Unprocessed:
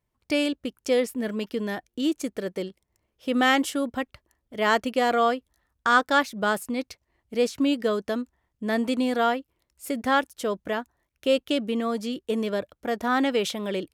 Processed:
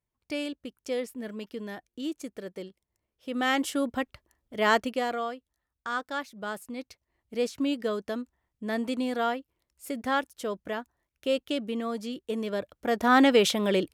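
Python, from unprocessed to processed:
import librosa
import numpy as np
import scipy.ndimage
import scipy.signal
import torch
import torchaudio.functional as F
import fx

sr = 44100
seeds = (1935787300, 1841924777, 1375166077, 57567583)

y = fx.gain(x, sr, db=fx.line((3.31, -8.5), (3.79, -1.0), (4.77, -1.0), (5.3, -12.0), (6.28, -12.0), (7.35, -5.0), (12.42, -5.0), (13.18, 4.0)))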